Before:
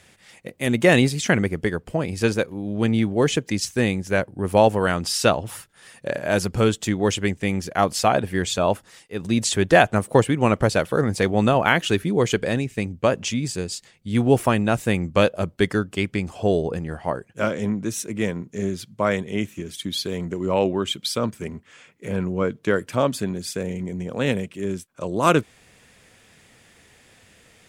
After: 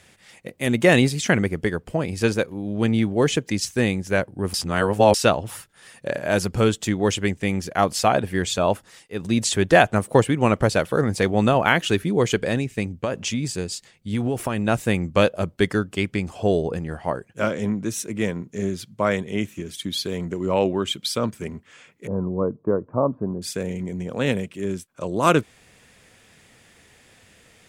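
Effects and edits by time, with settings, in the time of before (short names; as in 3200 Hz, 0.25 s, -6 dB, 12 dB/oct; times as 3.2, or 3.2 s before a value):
4.54–5.14 reverse
12.85–14.68 compressor 10:1, threshold -19 dBFS
22.07–23.42 Chebyshev low-pass 1100 Hz, order 4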